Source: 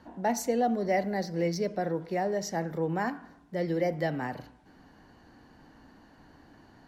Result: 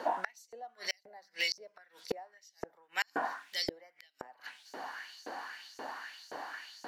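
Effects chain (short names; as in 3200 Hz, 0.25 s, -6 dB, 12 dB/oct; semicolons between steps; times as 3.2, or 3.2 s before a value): LFO high-pass saw up 1.9 Hz 450–6700 Hz; notches 50/100/150/200 Hz; flipped gate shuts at -33 dBFS, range -37 dB; gain +14.5 dB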